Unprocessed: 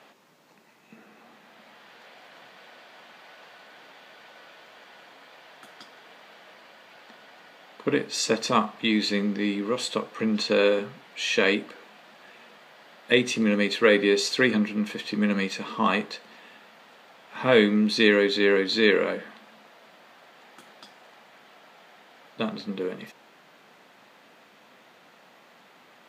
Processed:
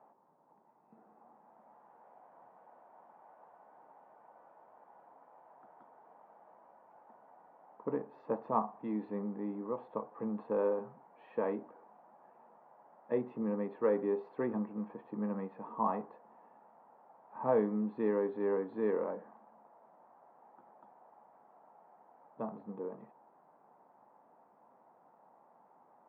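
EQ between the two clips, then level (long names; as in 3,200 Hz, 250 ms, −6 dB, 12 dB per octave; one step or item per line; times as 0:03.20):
transistor ladder low-pass 1,000 Hz, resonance 60%
−2.0 dB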